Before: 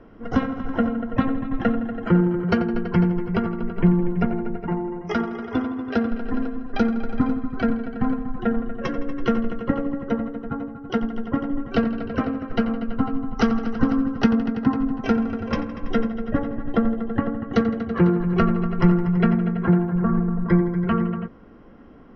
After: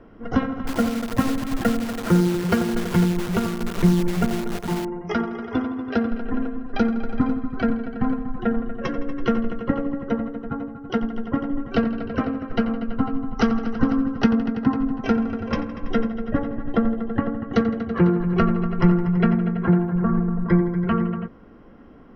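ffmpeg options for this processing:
ffmpeg -i in.wav -filter_complex "[0:a]asettb=1/sr,asplit=3[link_01][link_02][link_03];[link_01]atrim=end=0.674[link_04];[link_02]atrim=start=0.67:end=4.85,asetpts=PTS-STARTPTS,afade=type=in:duration=0.004:curve=qsin,afade=type=out:start_time=4.176:duration=0.004:curve=qsin,acrusher=bits=6:dc=4:mix=0:aa=0.000001[link_05];[link_03]atrim=start=4.846[link_06];[link_04][link_05]acrossfade=duration=0.004:curve1=hsin:curve2=qsin[link_07];[link_07][link_06]acrossfade=duration=0.004:curve1=qsin:curve2=hsin,asettb=1/sr,asplit=3[link_08][link_09][link_10];[link_08]atrim=end=6.224[link_11];[link_09]atrim=start=6.22:end=6.69,asetpts=PTS-STARTPTS,afade=type=in:duration=0.004:curve=qsin,afade=type=out:start_time=0.466:duration=0.004:curve=qsin,equalizer=frequency=4700:width=3.9:gain=-15[link_12];[link_10]atrim=start=6.686[link_13];[link_11][link_12]acrossfade=duration=0.004:curve1=hsin:curve2=qsin[link_14];[link_14][link_13]acrossfade=duration=0.004:curve1=qsin:curve2=hsin" out.wav

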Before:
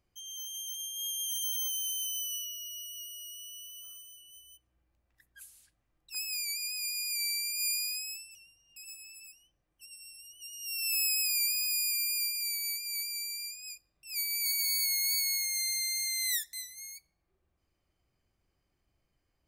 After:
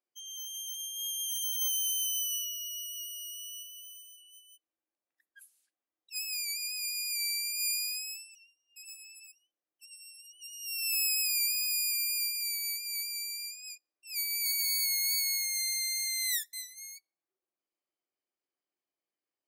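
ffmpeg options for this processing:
ffmpeg -i in.wav -filter_complex "[0:a]asettb=1/sr,asplit=3[link_01][link_02][link_03];[link_01]atrim=end=1.614[link_04];[link_02]atrim=start=1.61:end=3.63,asetpts=PTS-STARTPTS,afade=type=in:duration=0.004:curve=qsin,afade=type=out:start_time=2.016:duration=0.004:curve=qsin,tiltshelf=frequency=1300:gain=-3.5[link_05];[link_03]atrim=start=3.626[link_06];[link_04][link_05]acrossfade=duration=0.004:curve1=hsin:curve2=qsin[link_07];[link_07][link_06]acrossfade=duration=0.004:curve1=qsin:curve2=hsin,highpass=frequency=280:width=0.5412,highpass=frequency=280:width=1.3066,afftdn=noise_reduction=13:noise_floor=-47" out.wav

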